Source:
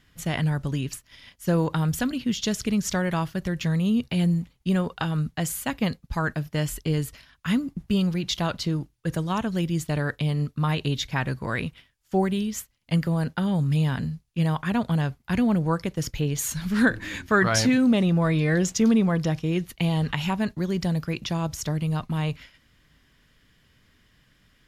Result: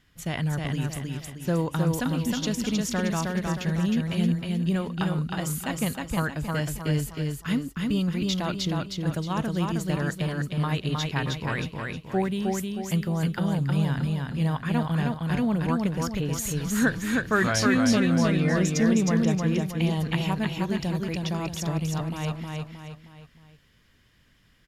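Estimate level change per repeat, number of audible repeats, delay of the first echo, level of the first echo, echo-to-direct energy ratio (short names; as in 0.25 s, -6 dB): -7.5 dB, 4, 0.313 s, -3.0 dB, -2.0 dB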